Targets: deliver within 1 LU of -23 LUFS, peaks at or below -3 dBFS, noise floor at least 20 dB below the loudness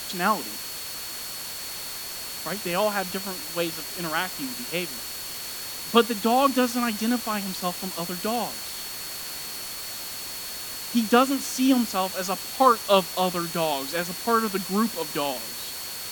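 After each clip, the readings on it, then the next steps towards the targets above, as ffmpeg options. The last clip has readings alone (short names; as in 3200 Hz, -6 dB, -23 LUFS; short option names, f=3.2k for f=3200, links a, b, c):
steady tone 4400 Hz; tone level -39 dBFS; noise floor -35 dBFS; noise floor target -46 dBFS; loudness -26.0 LUFS; peak -3.5 dBFS; loudness target -23.0 LUFS
-> -af "bandreject=f=4.4k:w=30"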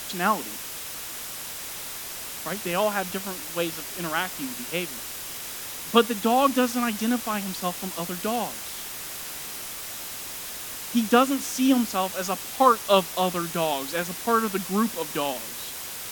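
steady tone none; noise floor -36 dBFS; noise floor target -47 dBFS
-> -af "afftdn=nr=11:nf=-36"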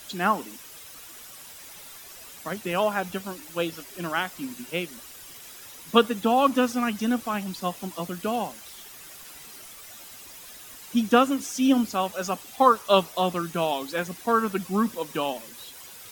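noise floor -45 dBFS; noise floor target -46 dBFS
-> -af "afftdn=nr=6:nf=-45"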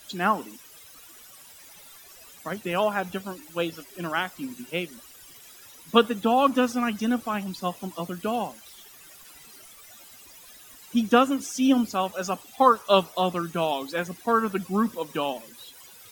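noise floor -49 dBFS; loudness -25.5 LUFS; peak -3.5 dBFS; loudness target -23.0 LUFS
-> -af "volume=2.5dB,alimiter=limit=-3dB:level=0:latency=1"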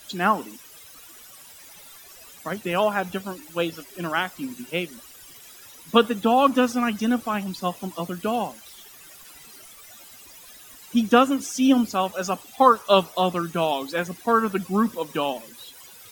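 loudness -23.5 LUFS; peak -3.0 dBFS; noise floor -47 dBFS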